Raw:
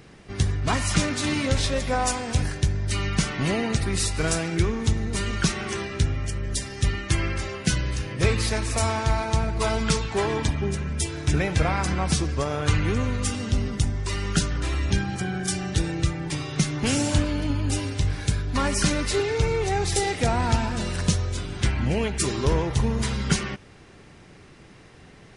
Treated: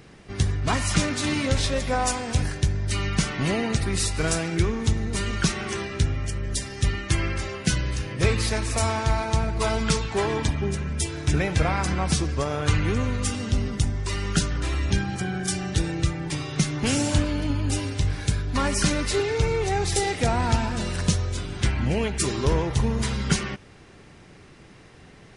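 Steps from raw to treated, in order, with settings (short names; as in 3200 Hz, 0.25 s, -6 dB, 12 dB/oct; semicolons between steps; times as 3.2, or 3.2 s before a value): short-mantissa float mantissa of 8-bit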